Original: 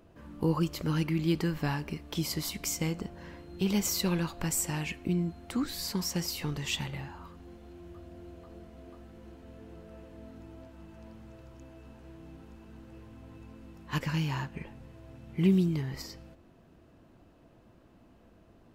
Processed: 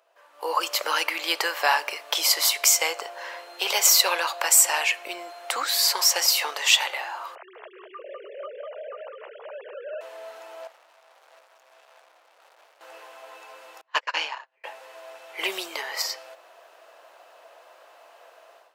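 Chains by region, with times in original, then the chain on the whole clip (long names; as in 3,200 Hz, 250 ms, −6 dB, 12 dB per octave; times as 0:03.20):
0:07.35–0:10.01: three sine waves on the formant tracks + single-tap delay 200 ms −5 dB
0:10.67–0:12.81: tube saturation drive 63 dB, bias 0.6 + amplitude tremolo 1.6 Hz, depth 36%
0:13.81–0:14.64: upward compression, threshold −35 dBFS + noise gate −31 dBFS, range −36 dB + high-frequency loss of the air 100 metres
whole clip: Butterworth high-pass 560 Hz 36 dB per octave; automatic gain control gain up to 16 dB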